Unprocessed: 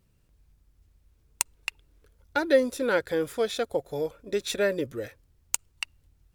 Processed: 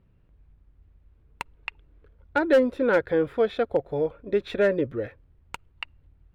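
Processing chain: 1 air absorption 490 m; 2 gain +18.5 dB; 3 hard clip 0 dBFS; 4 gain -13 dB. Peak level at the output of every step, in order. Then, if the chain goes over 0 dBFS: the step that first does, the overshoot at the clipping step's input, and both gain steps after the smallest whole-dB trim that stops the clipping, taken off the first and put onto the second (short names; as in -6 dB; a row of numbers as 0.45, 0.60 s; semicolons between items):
-11.5, +7.0, 0.0, -13.0 dBFS; step 2, 7.0 dB; step 2 +11.5 dB, step 4 -6 dB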